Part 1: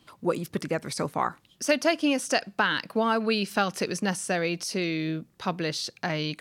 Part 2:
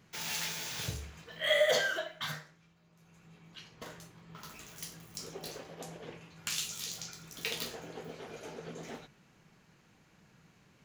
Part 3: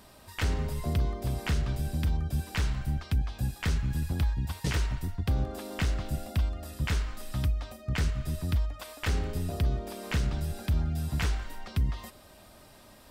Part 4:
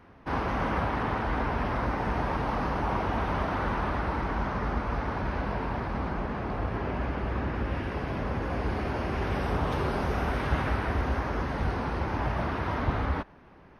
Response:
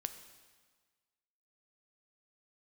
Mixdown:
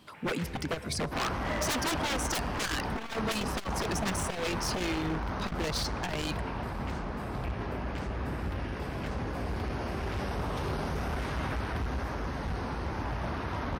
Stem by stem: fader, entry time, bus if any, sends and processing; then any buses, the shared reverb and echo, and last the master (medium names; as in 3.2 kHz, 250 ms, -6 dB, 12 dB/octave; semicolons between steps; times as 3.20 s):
0.0 dB, 0.00 s, send -8 dB, reverb removal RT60 1 s
-7.5 dB, 0.00 s, no send, steep low-pass 2.6 kHz
-9.0 dB, 0.00 s, no send, high-pass 62 Hz 24 dB/octave; peak limiter -23.5 dBFS, peak gain reduction 6.5 dB
-4.0 dB, 0.85 s, no send, tone controls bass +1 dB, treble +11 dB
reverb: on, RT60 1.5 s, pre-delay 4 ms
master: treble shelf 7.2 kHz -6 dB; wavefolder -24 dBFS; transformer saturation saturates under 82 Hz